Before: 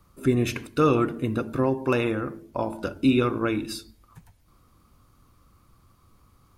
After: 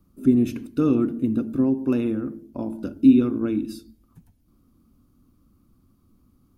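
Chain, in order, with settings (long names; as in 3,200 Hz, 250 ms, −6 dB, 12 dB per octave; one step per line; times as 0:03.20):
octave-band graphic EQ 125/250/500/1,000/2,000/4,000/8,000 Hz −3/+12/−5/−8/−9/−5/−6 dB
level −2.5 dB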